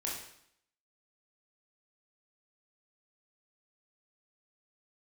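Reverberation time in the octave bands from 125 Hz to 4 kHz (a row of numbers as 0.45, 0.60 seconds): 0.70, 0.75, 0.70, 0.70, 0.70, 0.70 seconds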